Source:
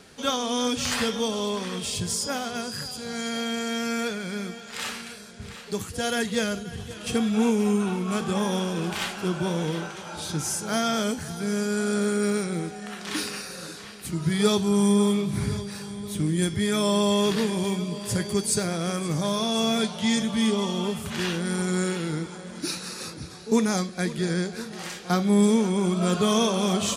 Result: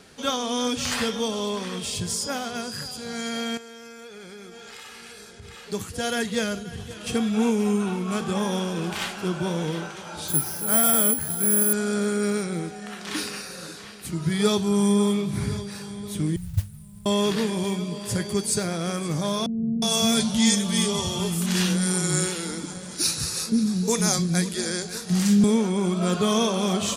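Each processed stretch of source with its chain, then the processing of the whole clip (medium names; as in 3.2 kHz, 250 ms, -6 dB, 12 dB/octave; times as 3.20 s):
3.57–5.67 s: comb 2.4 ms, depth 47% + compression 12:1, threshold -38 dBFS
10.28–11.73 s: treble shelf 5.7 kHz -8.5 dB + careless resampling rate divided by 4×, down filtered, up zero stuff
16.36–17.06 s: inverse Chebyshev band-stop 220–5700 Hz + tone controls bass +13 dB, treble -12 dB + modulation noise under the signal 20 dB
19.46–25.44 s: tone controls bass +6 dB, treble +11 dB + bands offset in time lows, highs 360 ms, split 300 Hz
whole clip: none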